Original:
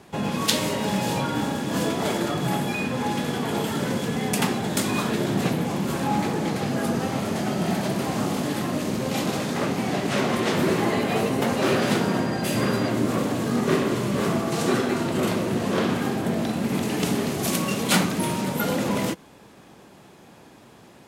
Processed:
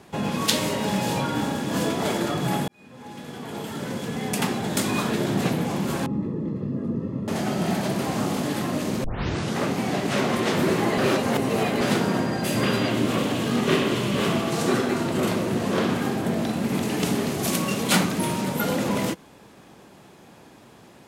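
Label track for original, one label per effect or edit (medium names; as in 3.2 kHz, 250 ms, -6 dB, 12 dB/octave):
2.680000	4.810000	fade in
6.060000	7.280000	boxcar filter over 58 samples
9.040000	9.040000	tape start 0.54 s
10.980000	11.810000	reverse
12.630000	14.520000	peaking EQ 3 kHz +8.5 dB 0.83 oct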